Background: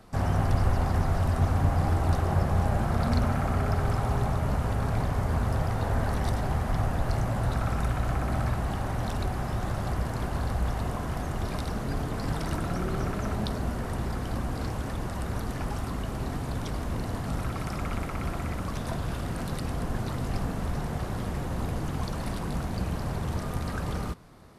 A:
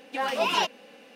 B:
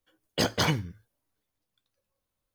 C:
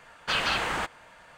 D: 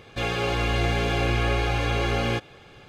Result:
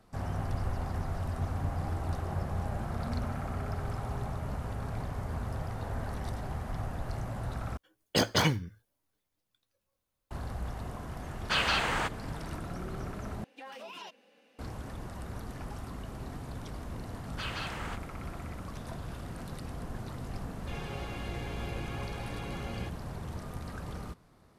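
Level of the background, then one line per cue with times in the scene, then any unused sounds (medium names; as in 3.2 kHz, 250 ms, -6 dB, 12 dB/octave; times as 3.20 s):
background -9 dB
7.77 s: replace with B -0.5 dB
11.22 s: add C -1.5 dB
13.44 s: replace with A -13.5 dB + compression, threshold -28 dBFS
17.10 s: add C -12 dB
20.50 s: add D -17 dB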